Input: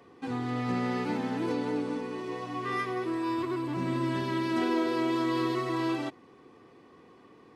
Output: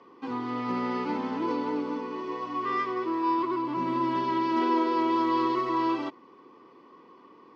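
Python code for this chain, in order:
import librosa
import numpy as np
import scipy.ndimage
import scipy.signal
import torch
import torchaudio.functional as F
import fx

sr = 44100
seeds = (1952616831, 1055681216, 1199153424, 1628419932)

y = fx.cabinet(x, sr, low_hz=260.0, low_slope=12, high_hz=4900.0, hz=(460.0, 730.0, 1000.0, 1700.0, 2500.0, 3800.0), db=(-3, -9, 8, -8, -4, -7))
y = y * librosa.db_to_amplitude(3.5)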